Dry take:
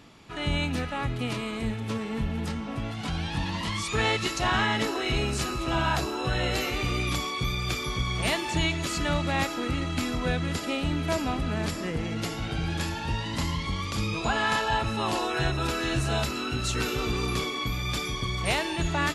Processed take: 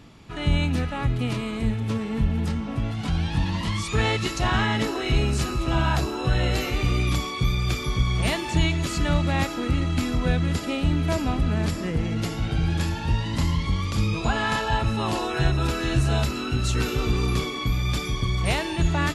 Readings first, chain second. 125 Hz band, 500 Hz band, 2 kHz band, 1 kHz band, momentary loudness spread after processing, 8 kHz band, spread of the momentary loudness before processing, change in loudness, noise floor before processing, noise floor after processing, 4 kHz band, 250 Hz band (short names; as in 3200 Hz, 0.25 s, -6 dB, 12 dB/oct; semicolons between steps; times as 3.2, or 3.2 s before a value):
+7.0 dB, +1.5 dB, 0.0 dB, +0.5 dB, 4 LU, 0.0 dB, 5 LU, +3.5 dB, -34 dBFS, -31 dBFS, 0.0 dB, +4.0 dB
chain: low shelf 220 Hz +9 dB